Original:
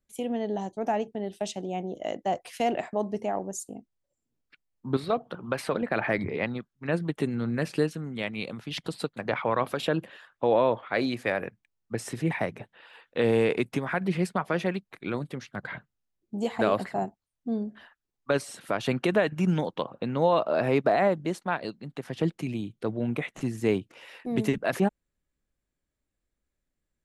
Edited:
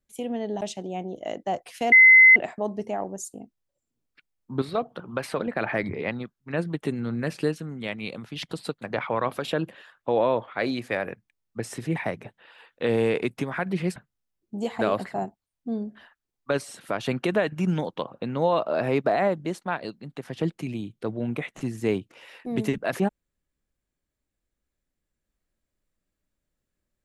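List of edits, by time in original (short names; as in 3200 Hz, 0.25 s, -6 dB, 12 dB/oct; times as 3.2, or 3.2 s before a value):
0.61–1.4 cut
2.71 add tone 2050 Hz -9 dBFS 0.44 s
14.31–15.76 cut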